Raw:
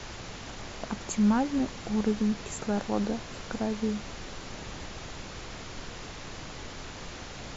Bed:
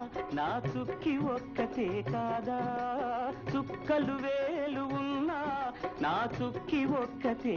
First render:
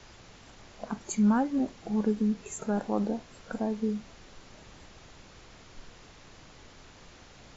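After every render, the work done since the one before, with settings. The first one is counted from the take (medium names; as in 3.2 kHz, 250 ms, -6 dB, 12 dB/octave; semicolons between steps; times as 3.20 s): noise print and reduce 11 dB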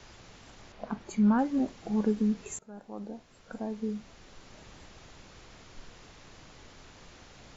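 0.72–1.39 s: distance through air 140 m; 2.59–4.62 s: fade in, from -23 dB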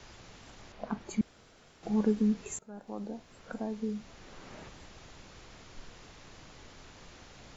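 1.21–1.83 s: room tone; 2.87–4.69 s: three bands compressed up and down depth 40%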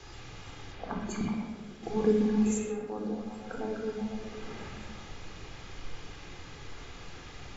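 repeats whose band climbs or falls 125 ms, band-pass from 2.7 kHz, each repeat -0.7 oct, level 0 dB; simulated room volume 2900 m³, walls furnished, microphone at 3.9 m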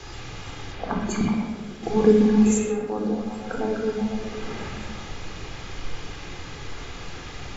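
trim +9 dB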